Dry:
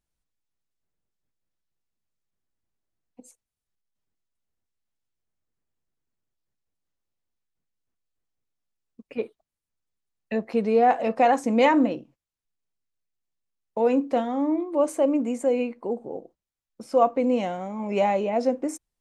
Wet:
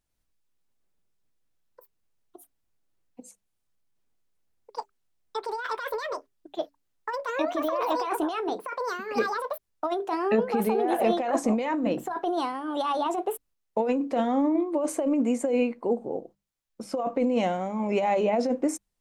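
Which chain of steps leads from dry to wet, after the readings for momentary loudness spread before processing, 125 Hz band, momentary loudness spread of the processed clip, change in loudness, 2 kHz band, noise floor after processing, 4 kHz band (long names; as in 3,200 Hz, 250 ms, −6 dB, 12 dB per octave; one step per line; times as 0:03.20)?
14 LU, can't be measured, 12 LU, −4.0 dB, 0.0 dB, −78 dBFS, +2.0 dB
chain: mains-hum notches 50/100/150/200 Hz
compressor whose output falls as the input rises −24 dBFS, ratio −1
delay with pitch and tempo change per echo 96 ms, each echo +6 semitones, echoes 2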